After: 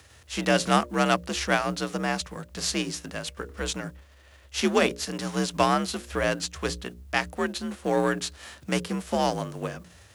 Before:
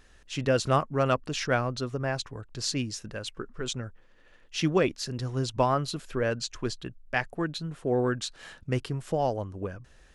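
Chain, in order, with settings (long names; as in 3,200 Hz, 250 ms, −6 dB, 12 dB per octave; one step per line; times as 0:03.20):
spectral envelope flattened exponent 0.6
mains-hum notches 60/120/180/240/300/360/420/480/540 Hz
frequency shifter +55 Hz
level +2.5 dB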